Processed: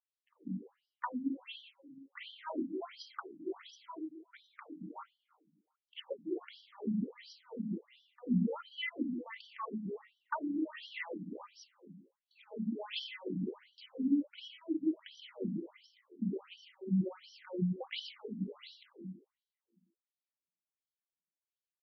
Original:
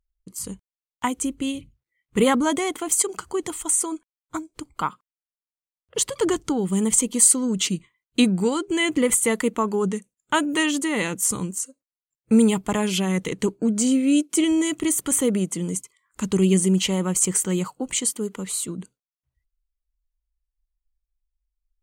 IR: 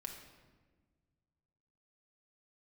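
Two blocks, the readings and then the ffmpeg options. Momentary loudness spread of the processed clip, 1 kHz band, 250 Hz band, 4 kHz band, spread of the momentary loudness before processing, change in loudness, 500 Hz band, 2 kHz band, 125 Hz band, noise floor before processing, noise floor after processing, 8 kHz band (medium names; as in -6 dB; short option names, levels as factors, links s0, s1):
19 LU, -17.0 dB, -15.0 dB, -16.5 dB, 13 LU, -17.5 dB, -19.0 dB, -17.0 dB, -13.5 dB, under -85 dBFS, under -85 dBFS, under -40 dB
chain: -filter_complex "[0:a]highshelf=f=11000:g=-10.5,bandreject=f=50:t=h:w=6,bandreject=f=100:t=h:w=6,bandreject=f=150:t=h:w=6,bandreject=f=200:t=h:w=6,bandreject=f=250:t=h:w=6,bandreject=f=300:t=h:w=6,bandreject=f=350:t=h:w=6,bandreject=f=400:t=h:w=6,bandreject=f=450:t=h:w=6,bandreject=f=500:t=h:w=6,asplit=2[s0][s1];[s1]adelay=93.29,volume=0.224,highshelf=f=4000:g=-2.1[s2];[s0][s2]amix=inputs=2:normalize=0,acrossover=split=130[s3][s4];[s4]acompressor=threshold=0.0282:ratio=10[s5];[s3][s5]amix=inputs=2:normalize=0[s6];[1:a]atrim=start_sample=2205,asetrate=61740,aresample=44100[s7];[s6][s7]afir=irnorm=-1:irlink=0,afftfilt=real='re*between(b*sr/1024,210*pow(4200/210,0.5+0.5*sin(2*PI*1.4*pts/sr))/1.41,210*pow(4200/210,0.5+0.5*sin(2*PI*1.4*pts/sr))*1.41)':imag='im*between(b*sr/1024,210*pow(4200/210,0.5+0.5*sin(2*PI*1.4*pts/sr))/1.41,210*pow(4200/210,0.5+0.5*sin(2*PI*1.4*pts/sr))*1.41)':win_size=1024:overlap=0.75,volume=1.88"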